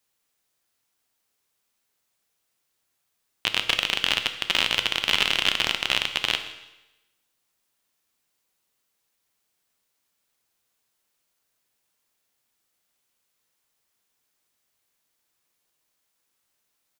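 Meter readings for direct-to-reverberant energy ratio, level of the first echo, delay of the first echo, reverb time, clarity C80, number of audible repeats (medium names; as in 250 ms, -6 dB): 8.0 dB, -20.5 dB, 164 ms, 0.95 s, 12.0 dB, 1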